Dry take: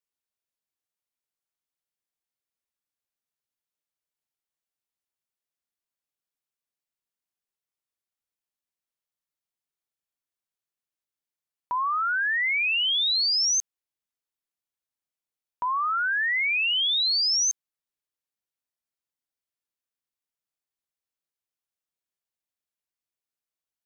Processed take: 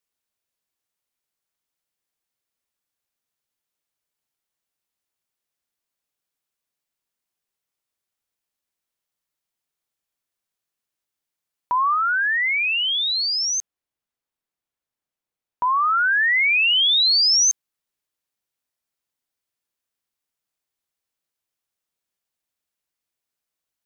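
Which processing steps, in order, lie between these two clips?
0:11.94–0:15.63: high-shelf EQ 2,600 Hz −7.5 dB
level +6.5 dB

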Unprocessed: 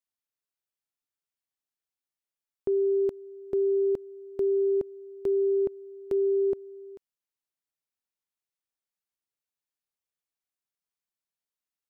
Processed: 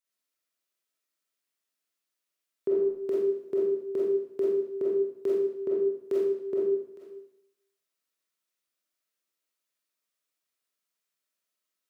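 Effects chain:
high-pass filter 200 Hz 12 dB per octave
parametric band 790 Hz −10 dB 0.27 octaves
0:02.75–0:03.44: upward compression, threshold −34 dBFS
comb and all-pass reverb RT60 0.78 s, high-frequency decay 0.95×, pre-delay 5 ms, DRR −7 dB

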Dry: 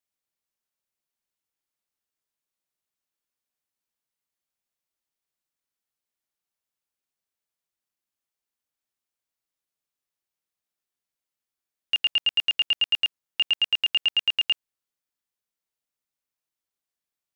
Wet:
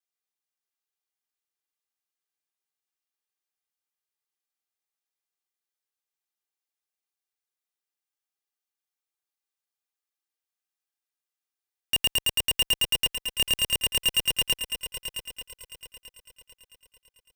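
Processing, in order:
lower of the sound and its delayed copy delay 2.5 ms
high-pass filter 540 Hz 6 dB per octave
leveller curve on the samples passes 5
soft clipping −28 dBFS, distortion −17 dB
on a send: echo machine with several playback heads 222 ms, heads first and third, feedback 54%, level −10 dB
on the sum: level +7.5 dB

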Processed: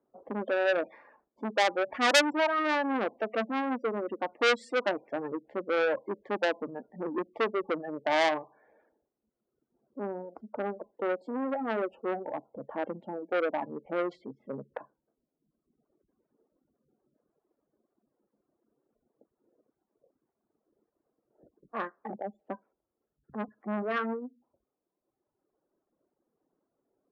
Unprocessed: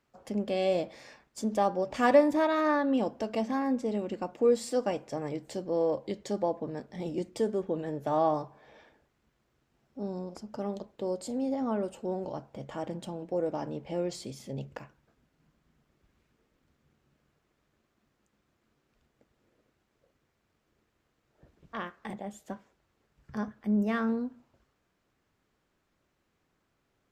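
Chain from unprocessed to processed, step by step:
gate on every frequency bin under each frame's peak −20 dB strong
reverb reduction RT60 1.5 s
low-pass that shuts in the quiet parts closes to 560 Hz, open at −25.5 dBFS
three-way crossover with the lows and the highs turned down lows −22 dB, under 240 Hz, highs −20 dB, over 2,500 Hz
saturating transformer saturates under 3,900 Hz
level +6.5 dB

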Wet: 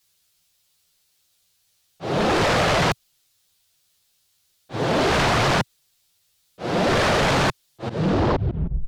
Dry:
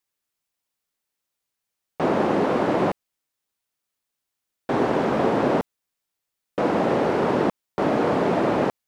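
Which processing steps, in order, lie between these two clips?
turntable brake at the end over 1.21 s
octave-band graphic EQ 125/250/500/1,000/2,000/4,000 Hz +5/−11/−4/−7/−5/+5 dB
volume swells 442 ms
flanger swept by the level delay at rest 11.9 ms, full sweep at −19.5 dBFS
sine wavefolder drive 16 dB, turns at −16 dBFS

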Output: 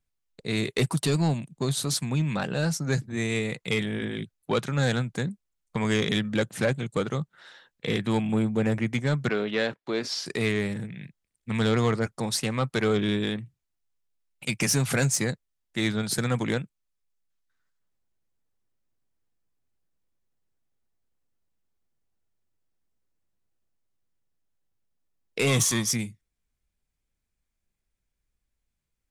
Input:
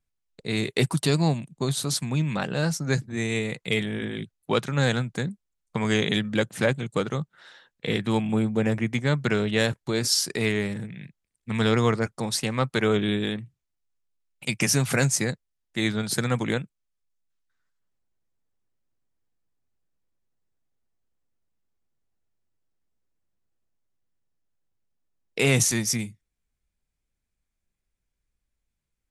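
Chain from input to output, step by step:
0:25.46–0:25.90: hollow resonant body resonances 1,100/3,300 Hz, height 15 dB → 17 dB, ringing for 25 ms
soft clipping −15 dBFS, distortion −17 dB
0:09.29–0:10.26: three-way crossover with the lows and the highs turned down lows −20 dB, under 200 Hz, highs −23 dB, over 4,800 Hz

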